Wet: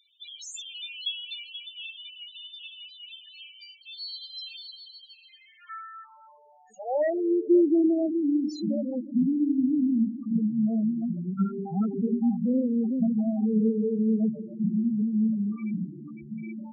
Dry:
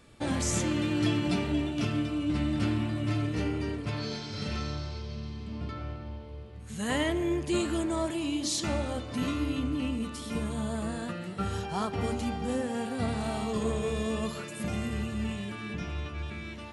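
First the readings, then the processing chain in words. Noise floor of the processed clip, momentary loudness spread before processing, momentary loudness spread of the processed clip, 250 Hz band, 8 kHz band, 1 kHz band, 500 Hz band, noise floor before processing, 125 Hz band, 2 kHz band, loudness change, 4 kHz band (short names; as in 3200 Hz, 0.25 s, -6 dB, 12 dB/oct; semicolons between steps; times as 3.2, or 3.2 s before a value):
-57 dBFS, 10 LU, 18 LU, +6.0 dB, under -10 dB, -6.0 dB, +3.0 dB, -41 dBFS, -4.5 dB, n/a, +5.0 dB, +1.0 dB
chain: high-pass sweep 3200 Hz -> 200 Hz, 4.93–8.23; loudest bins only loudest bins 4; gain +3 dB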